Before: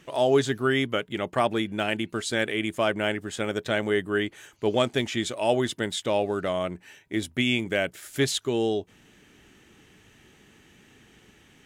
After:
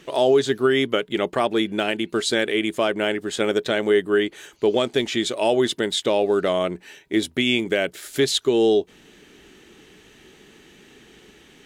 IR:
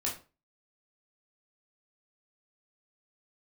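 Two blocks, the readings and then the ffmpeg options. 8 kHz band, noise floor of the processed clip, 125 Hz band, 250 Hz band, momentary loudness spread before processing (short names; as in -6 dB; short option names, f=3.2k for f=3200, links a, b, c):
+4.0 dB, -52 dBFS, -2.0 dB, +4.5 dB, 6 LU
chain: -af "equalizer=f=100:t=o:w=0.67:g=-9,equalizer=f=400:t=o:w=0.67:g=6,equalizer=f=4k:t=o:w=0.67:g=5,alimiter=limit=-13dB:level=0:latency=1:release=228,volume=4.5dB"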